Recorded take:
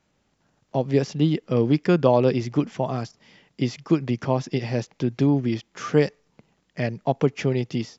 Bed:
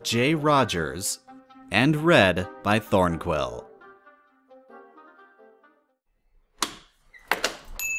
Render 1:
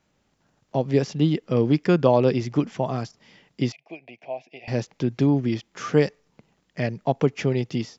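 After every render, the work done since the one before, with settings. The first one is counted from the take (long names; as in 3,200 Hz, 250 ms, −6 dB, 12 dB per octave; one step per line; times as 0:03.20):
0:03.72–0:04.68: pair of resonant band-passes 1,300 Hz, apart 1.8 octaves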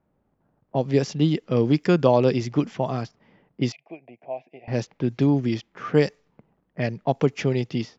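low-pass that shuts in the quiet parts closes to 950 Hz, open at −17.5 dBFS
high-shelf EQ 5,700 Hz +6 dB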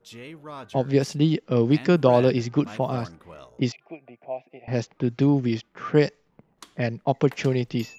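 mix in bed −19 dB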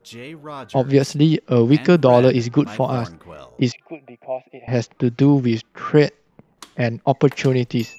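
level +5.5 dB
brickwall limiter −1 dBFS, peak gain reduction 3 dB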